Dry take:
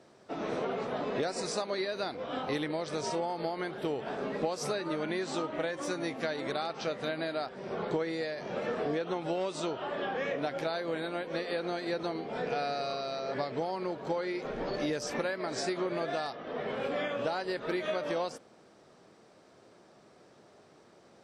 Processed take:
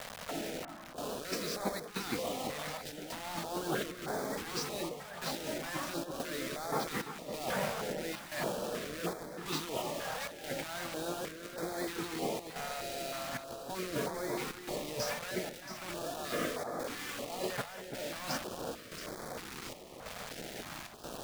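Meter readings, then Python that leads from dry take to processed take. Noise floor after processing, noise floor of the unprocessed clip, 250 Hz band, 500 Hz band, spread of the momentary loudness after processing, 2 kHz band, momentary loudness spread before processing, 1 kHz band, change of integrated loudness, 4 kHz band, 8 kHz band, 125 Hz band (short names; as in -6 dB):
-48 dBFS, -59 dBFS, -4.5 dB, -6.0 dB, 7 LU, -2.0 dB, 3 LU, -3.5 dB, -4.0 dB, 0.0 dB, +4.5 dB, -2.0 dB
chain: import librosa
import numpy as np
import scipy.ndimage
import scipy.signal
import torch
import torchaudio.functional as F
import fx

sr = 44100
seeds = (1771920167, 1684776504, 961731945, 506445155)

p1 = scipy.signal.sosfilt(scipy.signal.butter(2, 4100.0, 'lowpass', fs=sr, output='sos'), x)
p2 = fx.low_shelf(p1, sr, hz=360.0, db=-4.5)
p3 = fx.notch(p2, sr, hz=390.0, q=12.0)
p4 = fx.over_compress(p3, sr, threshold_db=-46.0, ratio=-1.0)
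p5 = fx.step_gate(p4, sr, bpm=92, pattern='xxxx..xxxxx.x', floor_db=-12.0, edge_ms=4.5)
p6 = fx.quant_dither(p5, sr, seeds[0], bits=8, dither='none')
p7 = p6 + fx.echo_alternate(p6, sr, ms=339, hz=1800.0, feedback_pct=76, wet_db=-7.5, dry=0)
p8 = fx.filter_held_notch(p7, sr, hz=3.2, low_hz=330.0, high_hz=2800.0)
y = p8 * 10.0 ** (8.0 / 20.0)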